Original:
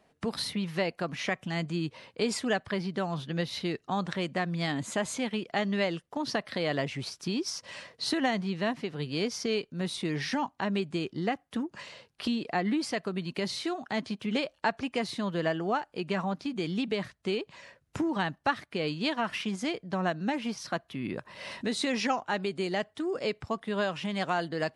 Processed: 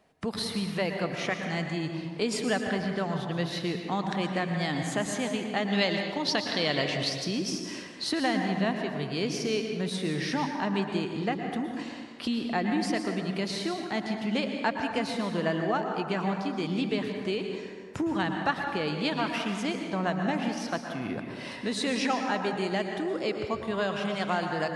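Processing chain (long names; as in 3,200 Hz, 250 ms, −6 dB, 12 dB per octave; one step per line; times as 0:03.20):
0:05.68–0:07.25: parametric band 4,000 Hz +9.5 dB 1.4 octaves
convolution reverb RT60 1.8 s, pre-delay 103 ms, DRR 3.5 dB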